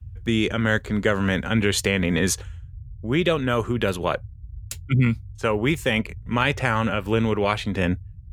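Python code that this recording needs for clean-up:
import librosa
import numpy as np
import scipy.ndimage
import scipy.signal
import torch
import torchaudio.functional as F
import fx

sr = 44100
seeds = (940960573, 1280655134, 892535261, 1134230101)

y = fx.noise_reduce(x, sr, print_start_s=4.21, print_end_s=4.71, reduce_db=29.0)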